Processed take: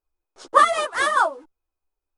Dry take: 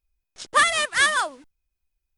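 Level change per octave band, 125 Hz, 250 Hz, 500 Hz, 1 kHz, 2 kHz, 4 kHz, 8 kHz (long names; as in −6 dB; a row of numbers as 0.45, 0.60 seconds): can't be measured, +3.0 dB, +7.0 dB, +5.5 dB, −3.5 dB, −6.5 dB, −7.0 dB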